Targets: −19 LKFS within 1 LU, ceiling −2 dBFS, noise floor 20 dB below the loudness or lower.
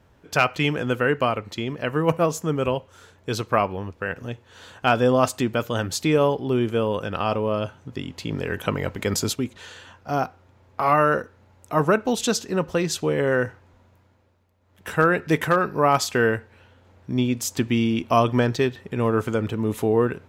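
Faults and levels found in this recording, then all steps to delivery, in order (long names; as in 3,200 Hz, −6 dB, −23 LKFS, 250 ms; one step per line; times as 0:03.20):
integrated loudness −23.5 LKFS; sample peak −5.0 dBFS; target loudness −19.0 LKFS
→ level +4.5 dB
brickwall limiter −2 dBFS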